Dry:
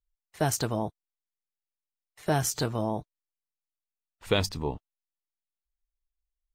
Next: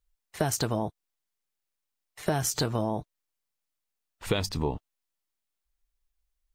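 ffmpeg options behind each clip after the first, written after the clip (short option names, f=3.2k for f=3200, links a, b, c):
-af "acompressor=threshold=-31dB:ratio=6,volume=7dB"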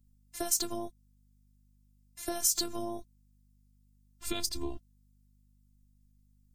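-af "bass=f=250:g=9,treble=f=4k:g=15,afftfilt=real='hypot(re,im)*cos(PI*b)':imag='0':win_size=512:overlap=0.75,aeval=exprs='val(0)+0.00126*(sin(2*PI*50*n/s)+sin(2*PI*2*50*n/s)/2+sin(2*PI*3*50*n/s)/3+sin(2*PI*4*50*n/s)/4+sin(2*PI*5*50*n/s)/5)':c=same,volume=-6.5dB"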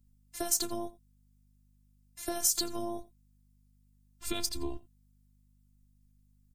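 -af "aecho=1:1:87:0.106"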